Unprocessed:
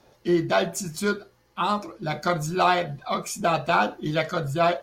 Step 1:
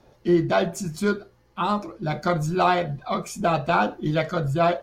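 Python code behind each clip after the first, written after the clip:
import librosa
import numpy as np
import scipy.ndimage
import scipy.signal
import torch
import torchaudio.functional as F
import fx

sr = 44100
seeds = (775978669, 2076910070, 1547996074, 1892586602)

y = fx.tilt_eq(x, sr, slope=-1.5)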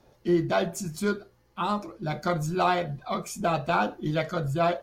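y = fx.high_shelf(x, sr, hz=7800.0, db=6.5)
y = y * 10.0 ** (-4.0 / 20.0)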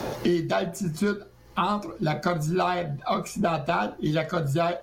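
y = fx.band_squash(x, sr, depth_pct=100)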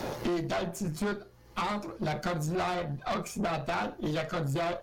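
y = fx.tube_stage(x, sr, drive_db=26.0, bias=0.7)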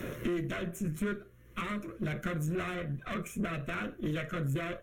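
y = fx.fixed_phaser(x, sr, hz=2000.0, stages=4)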